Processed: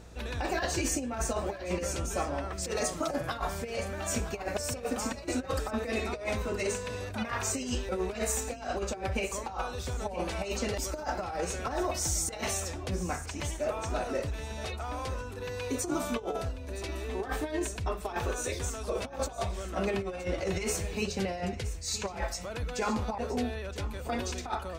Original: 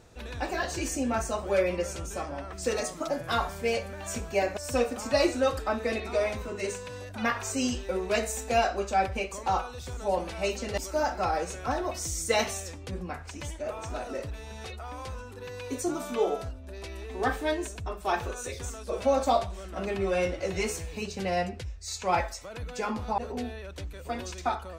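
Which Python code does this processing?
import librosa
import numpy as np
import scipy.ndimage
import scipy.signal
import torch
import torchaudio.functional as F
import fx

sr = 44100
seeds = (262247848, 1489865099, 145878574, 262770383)

p1 = fx.over_compress(x, sr, threshold_db=-31.0, ratio=-0.5)
p2 = fx.add_hum(p1, sr, base_hz=60, snr_db=20)
y = p2 + fx.echo_single(p2, sr, ms=969, db=-14.5, dry=0)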